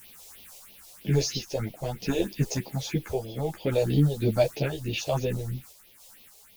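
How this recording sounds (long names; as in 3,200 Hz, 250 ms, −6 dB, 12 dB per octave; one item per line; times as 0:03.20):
a quantiser's noise floor 8 bits, dither triangular
phaser sweep stages 4, 3.1 Hz, lowest notch 220–1,500 Hz
sample-and-hold tremolo 3.5 Hz
a shimmering, thickened sound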